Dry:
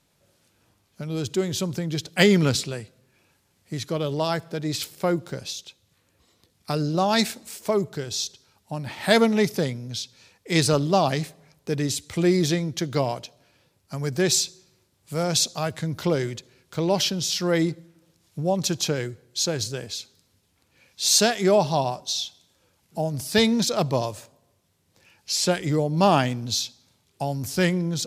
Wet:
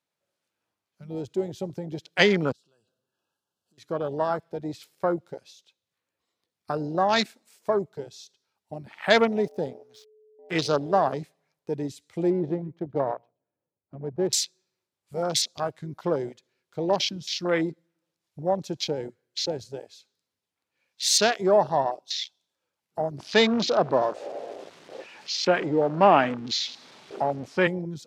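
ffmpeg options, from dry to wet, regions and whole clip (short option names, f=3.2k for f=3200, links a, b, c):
-filter_complex "[0:a]asettb=1/sr,asplit=3[a][b][c];[a]atrim=end=2.524[d];[b]atrim=start=2.52:end=3.78,asetpts=PTS-STARTPTS,afade=t=in:d=0.004:c=qsin,afade=t=out:st=1.256:d=0.004:c=qsin,asuperstop=centerf=2100:order=12:qfactor=2.2,acompressor=threshold=-43dB:ratio=8:attack=3.2:release=140:knee=1:detection=peak[e];[c]atrim=start=3.776[f];[d][e]acrossfade=d=0.004:c1=hsin:c2=qsin[g];[g][f]acrossfade=d=0.004:c1=qsin:c2=hsin,asettb=1/sr,asplit=3[h][i][j];[h]atrim=end=9.414[k];[i]atrim=start=9.41:end=11.14,asetpts=PTS-STARTPTS,afade=t=in:d=0.004:c=qsin,afade=t=out:st=1.726:d=0.004:c=qsin,bandreject=f=2.2k:w=11,aeval=exprs='sgn(val(0))*max(abs(val(0))-0.015,0)':c=same,aeval=exprs='val(0)+0.0141*sin(2*PI*430*n/s)':c=same[l];[j]atrim=start=11.136[m];[k][l]acrossfade=d=0.004:c1=hsin:c2=qsin[n];[n][m]acrossfade=d=0.004:c1=qsin:c2=hsin,asettb=1/sr,asplit=3[o][p][q];[o]atrim=end=12.304[r];[p]atrim=start=12.3:end=14.33,asetpts=PTS-STARTPTS,afade=t=in:d=0.004:c=qsin,afade=t=out:st=2.026:d=0.004:c=qsin,aecho=1:1:123:0.15,atrim=end_sample=89523,adynamicsmooth=sensitivity=1:basefreq=700[s];[q]atrim=start=14.326[t];[r][s]acrossfade=d=0.004:c1=hsin:c2=qsin[u];[u][t]acrossfade=d=0.004:c1=qsin:c2=hsin,asettb=1/sr,asplit=3[v][w][x];[v]atrim=end=23.184[y];[w]atrim=start=23.18:end=27.67,asetpts=PTS-STARTPTS,afade=t=in:d=0.004:c=qsin,afade=t=out:st=4.486:d=0.004:c=qsin,aeval=exprs='val(0)+0.5*0.0596*sgn(val(0))':c=same,highpass=210,lowpass=5.2k,lowshelf=f=300:g=5[z];[x]atrim=start=27.666[aa];[y][z]acrossfade=d=0.004:c1=hsin:c2=qsin[ab];[ab][aa]acrossfade=d=0.004:c1=qsin:c2=hsin,highpass=f=590:p=1,afwtdn=0.0355,highshelf=f=3.7k:g=-7.5,volume=3dB"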